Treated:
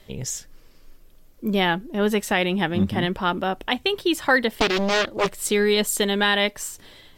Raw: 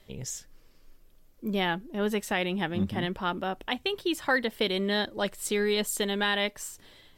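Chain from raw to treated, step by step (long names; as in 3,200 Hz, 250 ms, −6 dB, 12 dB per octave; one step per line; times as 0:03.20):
0:04.55–0:05.31: highs frequency-modulated by the lows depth 0.9 ms
level +7 dB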